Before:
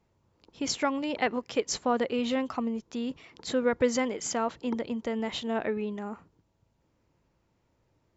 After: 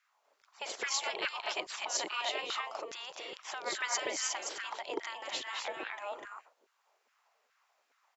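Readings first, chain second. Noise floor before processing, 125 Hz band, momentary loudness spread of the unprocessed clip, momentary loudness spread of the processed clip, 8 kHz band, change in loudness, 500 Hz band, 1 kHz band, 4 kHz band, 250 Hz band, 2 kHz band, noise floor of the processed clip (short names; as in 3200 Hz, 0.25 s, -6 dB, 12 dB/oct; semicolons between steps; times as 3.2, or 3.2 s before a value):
-73 dBFS, under -20 dB, 9 LU, 10 LU, n/a, -6.0 dB, -12.5 dB, -5.0 dB, +1.0 dB, -22.5 dB, 0.0 dB, -77 dBFS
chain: loudspeakers at several distances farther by 72 m -11 dB, 85 m -3 dB; spectral gate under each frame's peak -15 dB weak; LFO high-pass saw down 2.4 Hz 350–1600 Hz; dynamic EQ 1400 Hz, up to -7 dB, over -48 dBFS, Q 1.3; gain +2.5 dB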